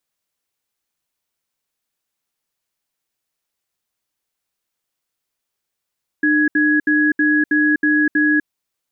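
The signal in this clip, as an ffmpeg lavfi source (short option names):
-f lavfi -i "aevalsrc='0.178*(sin(2*PI*302*t)+sin(2*PI*1670*t))*clip(min(mod(t,0.32),0.25-mod(t,0.32))/0.005,0,1)':d=2.22:s=44100"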